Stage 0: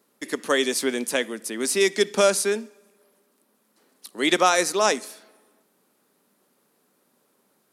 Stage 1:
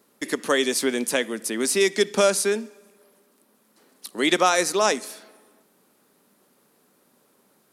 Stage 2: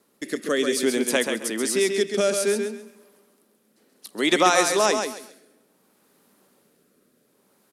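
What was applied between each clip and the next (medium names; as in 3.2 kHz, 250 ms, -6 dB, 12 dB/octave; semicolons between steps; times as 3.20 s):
bass shelf 79 Hz +8 dB; in parallel at +1 dB: compression, threshold -28 dBFS, peak gain reduction 14 dB; on the sum: trim -2.5 dB
rotary cabinet horn 0.6 Hz; feedback delay 134 ms, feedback 24%, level -6 dB; trim +1 dB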